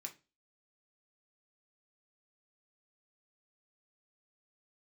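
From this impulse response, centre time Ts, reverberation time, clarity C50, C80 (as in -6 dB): 9 ms, 0.30 s, 15.0 dB, 23.0 dB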